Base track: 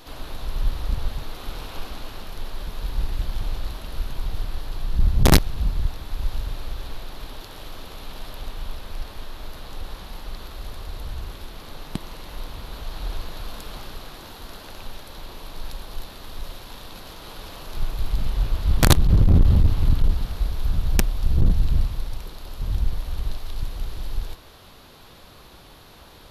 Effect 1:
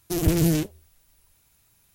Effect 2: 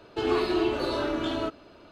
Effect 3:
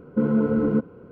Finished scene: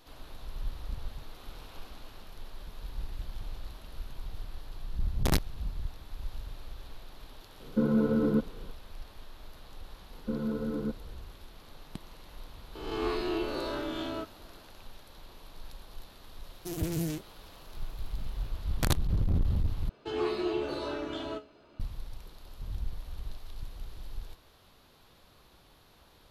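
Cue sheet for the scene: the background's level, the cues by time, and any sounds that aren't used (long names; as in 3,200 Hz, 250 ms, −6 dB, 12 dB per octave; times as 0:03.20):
base track −12.5 dB
0:07.60: mix in 3 −5 dB
0:10.11: mix in 3 −12 dB
0:12.75: mix in 2 −8.5 dB + peak hold with a rise ahead of every peak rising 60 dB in 0.95 s
0:16.55: mix in 1 −11.5 dB
0:19.89: overwrite with 2 −2 dB + tuned comb filter 71 Hz, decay 0.21 s, mix 80%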